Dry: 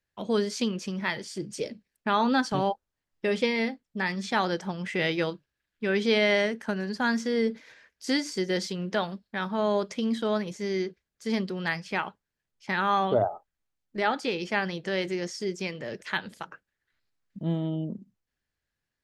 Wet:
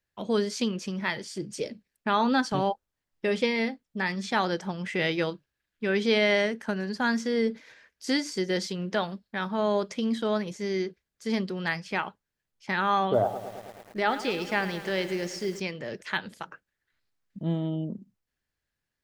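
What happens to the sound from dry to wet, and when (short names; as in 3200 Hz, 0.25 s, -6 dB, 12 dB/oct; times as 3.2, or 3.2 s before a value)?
13.03–15.6 lo-fi delay 0.108 s, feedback 80%, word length 7-bit, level -13 dB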